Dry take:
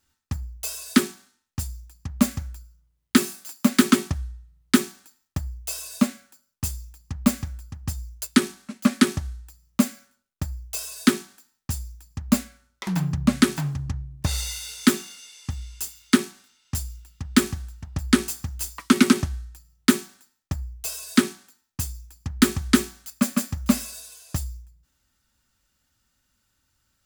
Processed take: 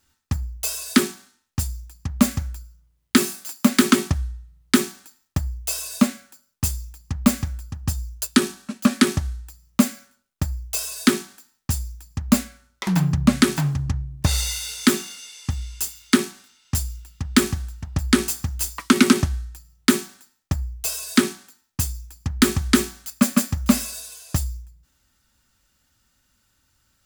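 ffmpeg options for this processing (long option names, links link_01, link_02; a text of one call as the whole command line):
ffmpeg -i in.wav -filter_complex "[0:a]asettb=1/sr,asplit=3[link_01][link_02][link_03];[link_01]atrim=end=7.704[link_04];[link_02]atrim=start=7.7:end=8.96,asetpts=PTS-STARTPTS,afade=type=in:duration=0.004:curve=qsin,afade=type=out:start_time=1.256:duration=0.004:curve=qsin,bandreject=frequency=2100:width=9.8[link_05];[link_03]atrim=start=8.956[link_06];[link_04][link_05]acrossfade=duration=0.004:curve1=hsin:curve2=qsin[link_07];[link_07][link_06]acrossfade=duration=0.004:curve1=qsin:curve2=hsin,alimiter=level_in=6.5dB:limit=-1dB:release=50:level=0:latency=1,volume=-1.5dB" out.wav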